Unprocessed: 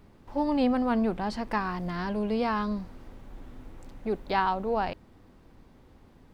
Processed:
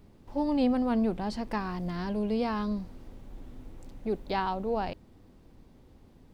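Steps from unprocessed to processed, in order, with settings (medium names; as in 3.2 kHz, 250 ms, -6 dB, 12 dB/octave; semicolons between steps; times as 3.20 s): peaking EQ 1.4 kHz -6.5 dB 1.9 oct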